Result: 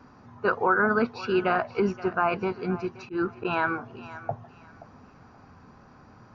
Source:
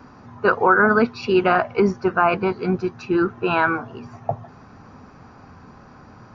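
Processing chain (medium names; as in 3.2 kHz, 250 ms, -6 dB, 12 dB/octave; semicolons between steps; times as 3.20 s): thinning echo 526 ms, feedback 27%, high-pass 610 Hz, level -15 dB; resampled via 16 kHz; 2.91–3.45 s: slow attack 109 ms; trim -7 dB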